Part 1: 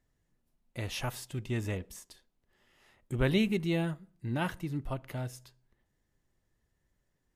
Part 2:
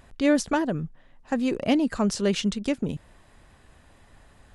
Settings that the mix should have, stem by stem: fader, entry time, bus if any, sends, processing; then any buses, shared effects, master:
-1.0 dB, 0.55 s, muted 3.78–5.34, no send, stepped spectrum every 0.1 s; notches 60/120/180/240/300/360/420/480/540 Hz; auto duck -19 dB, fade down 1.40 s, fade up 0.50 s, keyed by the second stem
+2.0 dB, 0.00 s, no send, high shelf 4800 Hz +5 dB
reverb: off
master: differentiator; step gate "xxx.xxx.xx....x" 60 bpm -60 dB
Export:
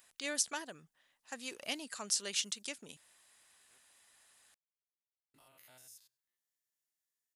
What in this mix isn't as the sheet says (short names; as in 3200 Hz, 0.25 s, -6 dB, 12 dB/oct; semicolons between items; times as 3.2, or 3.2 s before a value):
stem 2: missing high shelf 4800 Hz +5 dB; master: missing step gate "xxx.xxx.xx....x" 60 bpm -60 dB